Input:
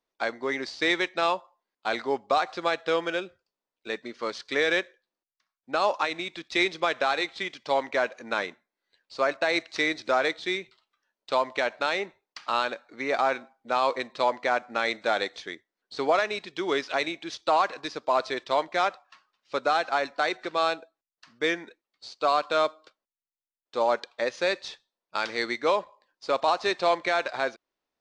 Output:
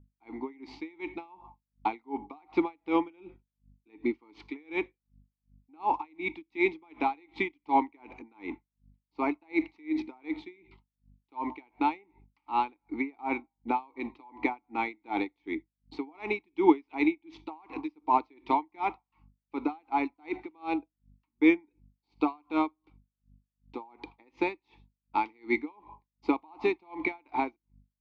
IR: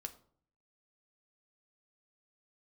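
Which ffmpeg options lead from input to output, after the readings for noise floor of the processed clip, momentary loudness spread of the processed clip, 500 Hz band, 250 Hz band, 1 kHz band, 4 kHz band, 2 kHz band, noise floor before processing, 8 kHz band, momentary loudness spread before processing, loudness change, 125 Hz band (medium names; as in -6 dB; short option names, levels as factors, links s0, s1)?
under -85 dBFS, 16 LU, -8.5 dB, +6.0 dB, -4.5 dB, -18.5 dB, -8.5 dB, under -85 dBFS, under -25 dB, 10 LU, -4.5 dB, -4.0 dB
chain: -filter_complex "[0:a]agate=range=0.0224:threshold=0.00282:ratio=3:detection=peak,alimiter=limit=0.119:level=0:latency=1:release=143,asplit=3[s0][s1][s2];[s0]bandpass=f=300:t=q:w=8,volume=1[s3];[s1]bandpass=f=870:t=q:w=8,volume=0.501[s4];[s2]bandpass=f=2240:t=q:w=8,volume=0.355[s5];[s3][s4][s5]amix=inputs=3:normalize=0,dynaudnorm=f=110:g=5:m=6.31,aeval=exprs='val(0)+0.000794*(sin(2*PI*50*n/s)+sin(2*PI*2*50*n/s)/2+sin(2*PI*3*50*n/s)/3+sin(2*PI*4*50*n/s)/4+sin(2*PI*5*50*n/s)/5)':c=same,highshelf=f=2500:g=-10,asplit=2[s6][s7];[1:a]atrim=start_sample=2205,atrim=end_sample=3969[s8];[s7][s8]afir=irnorm=-1:irlink=0,volume=0.398[s9];[s6][s9]amix=inputs=2:normalize=0,aeval=exprs='val(0)*pow(10,-35*(0.5-0.5*cos(2*PI*2.7*n/s))/20)':c=same,volume=1.68"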